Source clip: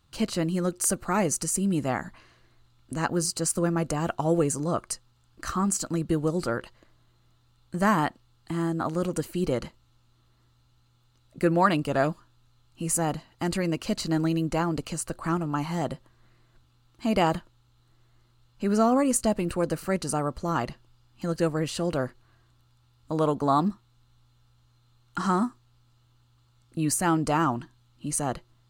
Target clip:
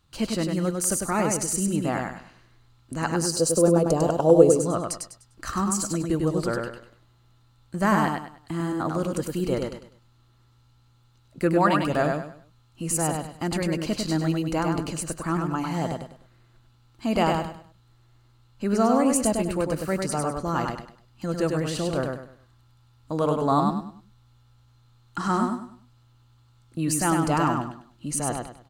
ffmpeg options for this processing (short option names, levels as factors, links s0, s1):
-filter_complex "[0:a]asettb=1/sr,asplit=3[s0][s1][s2];[s0]atrim=end=3.244[s3];[s1]atrim=start=3.24:end=4.56,asetpts=PTS-STARTPTS,afade=t=in:d=0.004:c=qsin,afade=t=out:st=1.316:d=0.004:c=qsin,equalizer=f=500:t=o:w=1:g=11,equalizer=f=2000:t=o:w=1:g=-11,equalizer=f=4000:t=o:w=1:g=4[s4];[s2]atrim=start=4.556[s5];[s3][s4]acrossfade=d=0.004:c1=hsin:c2=qsin[s6];[s6][s5]acrossfade=d=0.004:c1=qsin:c2=hsin,asplit=2[s7][s8];[s8]aecho=0:1:100|200|300|400:0.631|0.196|0.0606|0.0188[s9];[s7][s9]amix=inputs=2:normalize=0"